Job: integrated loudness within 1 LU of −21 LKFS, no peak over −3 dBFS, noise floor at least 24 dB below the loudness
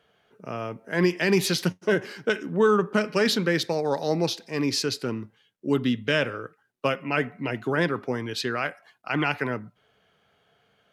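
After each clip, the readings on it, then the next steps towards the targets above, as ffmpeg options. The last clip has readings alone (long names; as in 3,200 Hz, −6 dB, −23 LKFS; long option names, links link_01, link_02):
integrated loudness −26.0 LKFS; sample peak −9.0 dBFS; target loudness −21.0 LKFS
→ -af "volume=5dB"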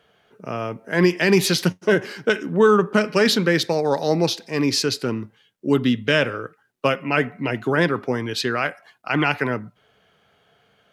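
integrated loudness −21.0 LKFS; sample peak −4.0 dBFS; background noise floor −62 dBFS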